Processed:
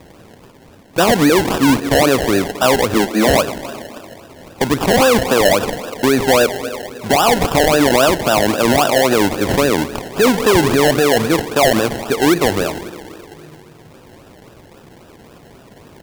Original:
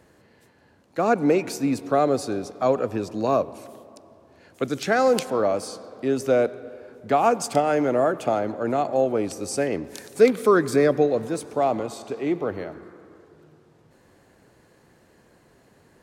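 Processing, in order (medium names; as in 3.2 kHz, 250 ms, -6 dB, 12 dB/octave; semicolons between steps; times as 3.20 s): 2.94–3.38 s: Chebyshev band-pass 200–4700 Hz, order 5; in parallel at -7.5 dB: overload inside the chain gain 17 dB; on the sum: decimation with a swept rate 29×, swing 60% 3.7 Hz; loudness maximiser +16.5 dB; trim -5 dB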